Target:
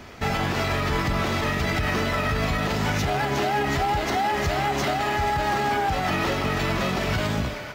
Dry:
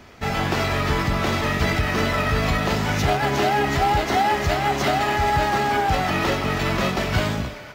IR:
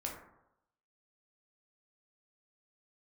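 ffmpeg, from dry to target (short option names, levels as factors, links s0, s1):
-af "alimiter=limit=0.112:level=0:latency=1:release=135,volume=1.5"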